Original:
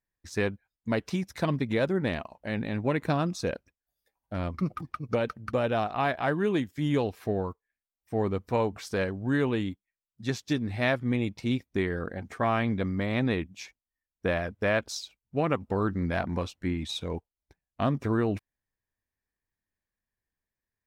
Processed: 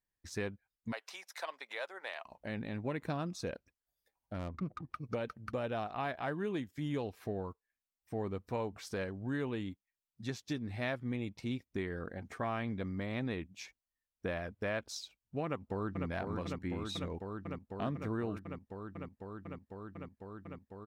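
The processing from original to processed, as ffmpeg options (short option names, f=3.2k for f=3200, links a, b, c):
-filter_complex "[0:a]asplit=3[a][b][c];[a]afade=t=out:st=0.91:d=0.02[d];[b]highpass=f=650:w=0.5412,highpass=f=650:w=1.3066,afade=t=in:st=0.91:d=0.02,afade=t=out:st=2.25:d=0.02[e];[c]afade=t=in:st=2.25:d=0.02[f];[d][e][f]amix=inputs=3:normalize=0,asplit=3[g][h][i];[g]afade=t=out:st=4.38:d=0.02[j];[h]adynamicsmooth=sensitivity=6:basefreq=1.1k,afade=t=in:st=4.38:d=0.02,afade=t=out:st=4.89:d=0.02[k];[i]afade=t=in:st=4.89:d=0.02[l];[j][k][l]amix=inputs=3:normalize=0,asplit=2[m][n];[n]afade=t=in:st=15.45:d=0.01,afade=t=out:st=16.08:d=0.01,aecho=0:1:500|1000|1500|2000|2500|3000|3500|4000|4500|5000|5500|6000:0.562341|0.47799|0.406292|0.345348|0.293546|0.249514|0.212087|0.180274|0.153233|0.130248|0.110711|0.094104[o];[m][o]amix=inputs=2:normalize=0,acompressor=threshold=-41dB:ratio=1.5,volume=-3.5dB"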